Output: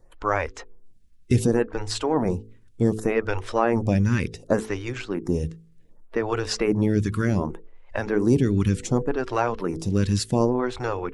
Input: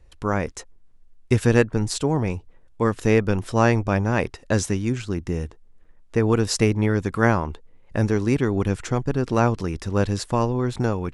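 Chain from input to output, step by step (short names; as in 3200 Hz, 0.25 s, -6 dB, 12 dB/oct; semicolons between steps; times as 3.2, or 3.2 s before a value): bin magnitudes rounded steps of 15 dB; limiter -11 dBFS, peak gain reduction 8.5 dB; de-hum 54.45 Hz, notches 9; photocell phaser 0.67 Hz; gain +4.5 dB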